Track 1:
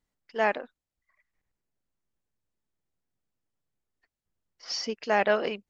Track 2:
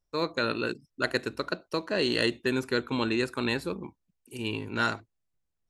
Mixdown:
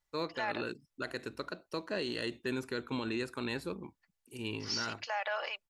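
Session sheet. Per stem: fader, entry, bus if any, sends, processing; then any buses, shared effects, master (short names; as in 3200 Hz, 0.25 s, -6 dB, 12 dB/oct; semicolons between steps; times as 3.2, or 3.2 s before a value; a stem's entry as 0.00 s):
-0.5 dB, 0.00 s, no send, HPF 730 Hz 24 dB/oct; comb 3.5 ms, depth 44%
-6.0 dB, 0.00 s, no send, dry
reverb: off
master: limiter -25 dBFS, peak gain reduction 12 dB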